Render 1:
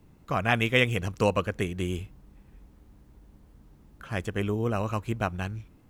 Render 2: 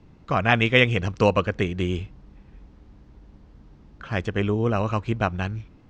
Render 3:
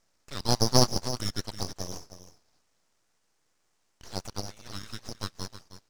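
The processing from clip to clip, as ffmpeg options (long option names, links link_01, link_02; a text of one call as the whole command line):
ffmpeg -i in.wav -af "lowpass=frequency=5700:width=0.5412,lowpass=frequency=5700:width=1.3066,volume=5dB" out.wav
ffmpeg -i in.wav -af "highpass=frequency=2800:width_type=q:width=1.8,aecho=1:1:315:0.251,aeval=exprs='abs(val(0))':channel_layout=same,volume=-1dB" out.wav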